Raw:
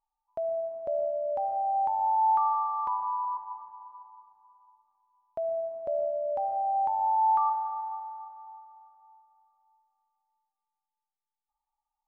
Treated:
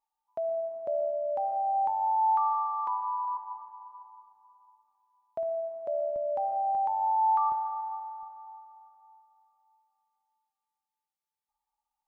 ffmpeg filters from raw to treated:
-af "asetnsamples=n=441:p=0,asendcmd='1.9 highpass f 490;3.28 highpass f 200;4.01 highpass f 96;5.43 highpass f 360;6.16 highpass f 110;6.75 highpass f 430;7.52 highpass f 190;8.23 highpass f 55',highpass=f=170:p=1"

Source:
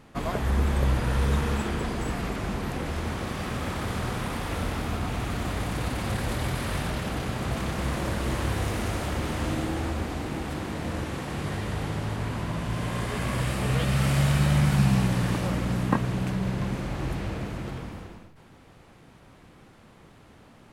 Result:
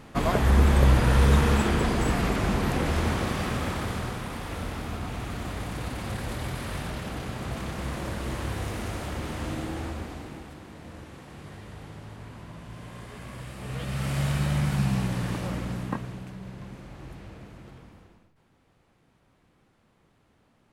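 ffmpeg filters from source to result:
-af "volume=4.73,afade=t=out:st=3.03:d=1.18:silence=0.354813,afade=t=out:st=9.82:d=0.74:silence=0.375837,afade=t=in:st=13.54:d=0.72:silence=0.375837,afade=t=out:st=15.57:d=0.7:silence=0.375837"

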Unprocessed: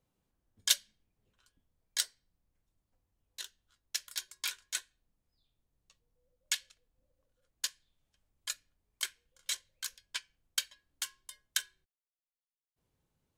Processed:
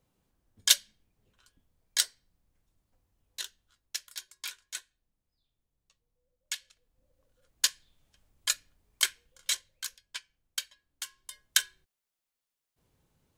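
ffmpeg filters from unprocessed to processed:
-af "volume=23.7,afade=t=out:st=3.42:d=0.69:silence=0.375837,afade=t=in:st=6.58:d=1.07:silence=0.237137,afade=t=out:st=9.02:d=1.02:silence=0.281838,afade=t=in:st=11.07:d=0.5:silence=0.334965"

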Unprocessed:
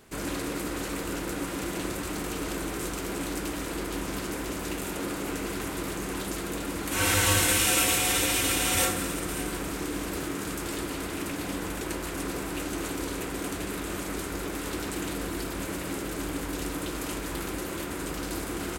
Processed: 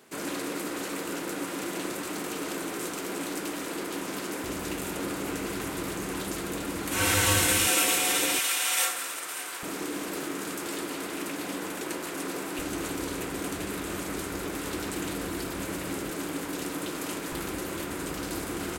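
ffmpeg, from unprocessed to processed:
-af "asetnsamples=n=441:p=0,asendcmd='4.44 highpass f 70;7.67 highpass f 240;8.39 highpass f 850;9.63 highpass f 220;12.59 highpass f 70;16.1 highpass f 150;17.32 highpass f 68',highpass=210"

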